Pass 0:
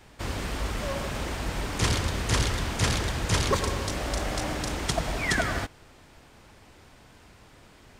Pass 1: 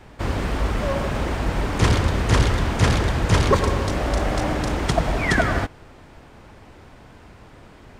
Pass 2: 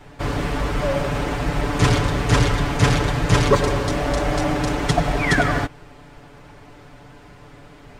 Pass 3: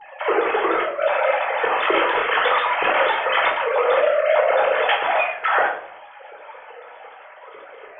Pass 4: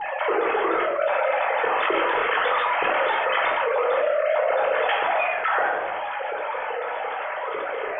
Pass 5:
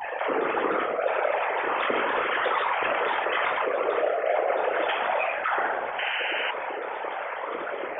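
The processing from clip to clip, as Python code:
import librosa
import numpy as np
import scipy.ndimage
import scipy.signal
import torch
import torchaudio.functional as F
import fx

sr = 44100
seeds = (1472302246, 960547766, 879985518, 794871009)

y1 = fx.high_shelf(x, sr, hz=2800.0, db=-11.5)
y1 = y1 * librosa.db_to_amplitude(8.5)
y2 = y1 + 0.76 * np.pad(y1, (int(6.9 * sr / 1000.0), 0))[:len(y1)]
y3 = fx.sine_speech(y2, sr)
y3 = fx.over_compress(y3, sr, threshold_db=-22.0, ratio=-0.5)
y3 = fx.room_shoebox(y3, sr, seeds[0], volume_m3=860.0, walls='furnished', distance_m=4.2)
y3 = y3 * librosa.db_to_amplitude(-2.0)
y4 = fx.air_absorb(y3, sr, metres=180.0)
y4 = fx.env_flatten(y4, sr, amount_pct=70)
y4 = y4 * librosa.db_to_amplitude(-5.5)
y5 = fx.whisperise(y4, sr, seeds[1])
y5 = fx.spec_paint(y5, sr, seeds[2], shape='noise', start_s=5.98, length_s=0.53, low_hz=1400.0, high_hz=3100.0, level_db=-26.0)
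y5 = y5 * librosa.db_to_amplitude(-3.5)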